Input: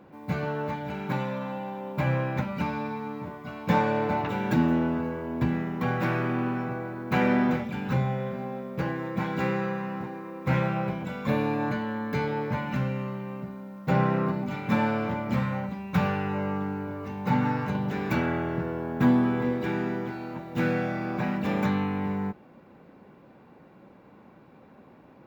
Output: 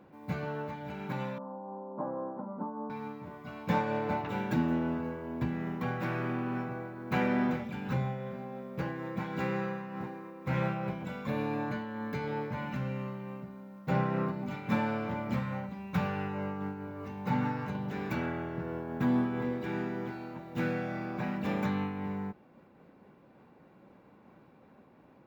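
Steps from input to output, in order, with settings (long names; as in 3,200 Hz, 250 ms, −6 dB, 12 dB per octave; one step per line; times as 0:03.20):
0:01.38–0:02.90: elliptic band-pass filter 210–1,100 Hz, stop band 40 dB
amplitude modulation by smooth noise, depth 50%
level −3.5 dB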